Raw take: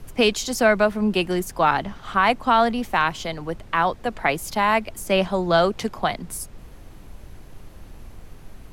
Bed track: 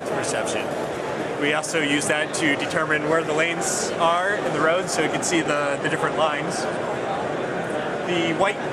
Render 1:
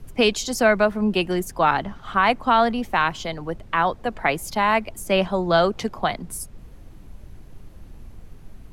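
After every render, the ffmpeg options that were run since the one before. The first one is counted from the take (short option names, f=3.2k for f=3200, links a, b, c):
-af "afftdn=nr=6:nf=-43"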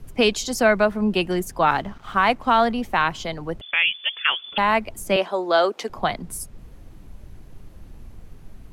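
-filter_complex "[0:a]asettb=1/sr,asplit=3[a][b][c];[a]atrim=end=1.704[d];[b]atrim=start=1.7:end=2.67,asetpts=PTS-STARTPTS,afade=t=in:d=0.004:c=qsin,afade=t=out:st=0.966:d=0.004:c=qsin,aeval=exprs='sgn(val(0))*max(abs(val(0))-0.00355,0)':c=same[e];[c]atrim=start=2.666[f];[d][e]acrossfade=d=0.004:c1=hsin:c2=qsin[g];[g][f]acrossfade=d=0.004:c1=qsin:c2=hsin,asettb=1/sr,asplit=3[h][i][j];[h]atrim=end=3.614[k];[i]atrim=start=3.61:end=4.58,asetpts=PTS-STARTPTS,afade=t=in:d=0.004:c=qsin,afade=t=out:st=0.966:d=0.004:c=qsin,lowpass=f=3k:t=q:w=0.5098,lowpass=f=3k:t=q:w=0.6013,lowpass=f=3k:t=q:w=0.9,lowpass=f=3k:t=q:w=2.563,afreqshift=-3500[l];[j]atrim=start=4.576[m];[k][l]acrossfade=d=0.004:c1=hsin:c2=qsin[n];[n][m]acrossfade=d=0.004:c1=qsin:c2=hsin,asettb=1/sr,asplit=3[o][p][q];[o]atrim=end=5.164[r];[p]atrim=start=5.16:end=5.9,asetpts=PTS-STARTPTS,afade=t=in:d=0.004:c=qsin,afade=t=out:st=0.736:d=0.004:c=qsin,highpass=f=300:w=0.5412,highpass=f=300:w=1.3066[s];[q]atrim=start=5.896[t];[r][s]acrossfade=d=0.004:c1=hsin:c2=qsin[u];[u][t]acrossfade=d=0.004:c1=qsin:c2=hsin"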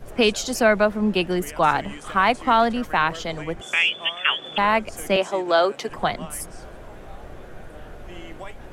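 -filter_complex "[1:a]volume=-18dB[a];[0:a][a]amix=inputs=2:normalize=0"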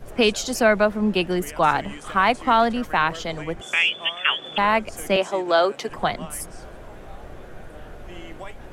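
-af anull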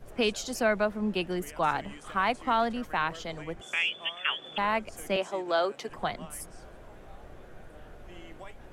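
-af "volume=-8.5dB"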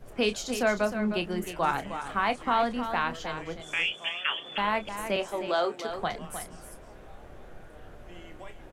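-filter_complex "[0:a]asplit=2[a][b];[b]adelay=29,volume=-11dB[c];[a][c]amix=inputs=2:normalize=0,aecho=1:1:309:0.335"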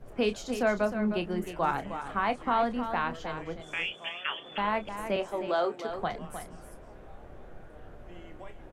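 -af "highshelf=f=2.2k:g=-8.5"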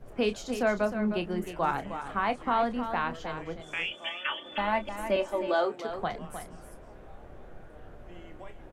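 -filter_complex "[0:a]asettb=1/sr,asplit=3[a][b][c];[a]atrim=end=3.914[d];[b]atrim=start=3.91:end=5.64,asetpts=PTS-STARTPTS,afade=t=in:d=0.004:c=qsin,afade=t=out:st=1.726:d=0.004:c=qsin,aecho=1:1:3.4:0.64,atrim=end_sample=76293[e];[c]atrim=start=5.636[f];[d][e]acrossfade=d=0.004:c1=hsin:c2=qsin[g];[g][f]acrossfade=d=0.004:c1=qsin:c2=hsin"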